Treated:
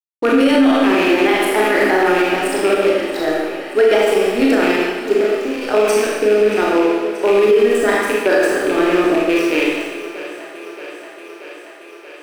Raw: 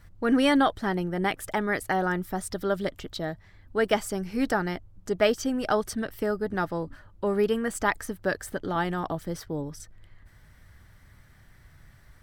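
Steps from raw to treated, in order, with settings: rattling part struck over -31 dBFS, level -21 dBFS; resonant low shelf 240 Hz -10 dB, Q 3; 5.14–5.74 compressor 6:1, threshold -32 dBFS, peak gain reduction 16 dB; rotary speaker horn 6.7 Hz, later 0.8 Hz, at 4.27; crossover distortion -44 dBFS; thinning echo 0.63 s, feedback 77%, high-pass 220 Hz, level -16 dB; Schroeder reverb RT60 1.3 s, combs from 26 ms, DRR -5 dB; maximiser +14.5 dB; gain -4 dB

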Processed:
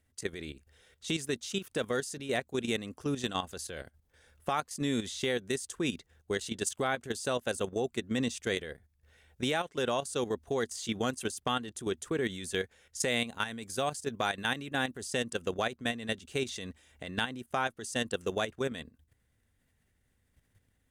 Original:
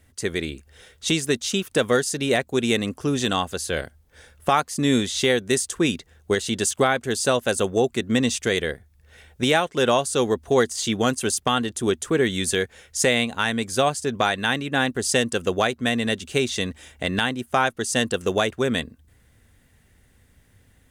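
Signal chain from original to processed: 13.08–15.02 high shelf 8300 Hz +6 dB; level quantiser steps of 11 dB; gain -7.5 dB

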